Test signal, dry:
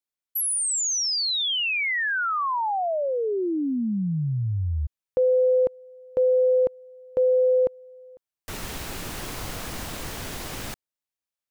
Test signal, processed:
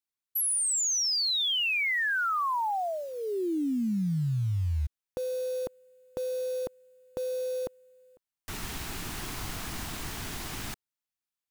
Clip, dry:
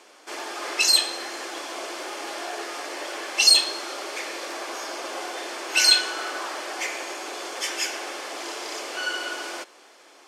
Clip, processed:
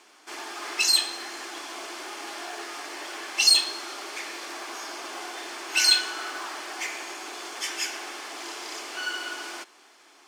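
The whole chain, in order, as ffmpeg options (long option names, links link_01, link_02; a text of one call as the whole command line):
ffmpeg -i in.wav -af "acrusher=bits=7:mode=log:mix=0:aa=0.000001,equalizer=frequency=530:width_type=o:width=0.45:gain=-11,volume=-2.5dB" out.wav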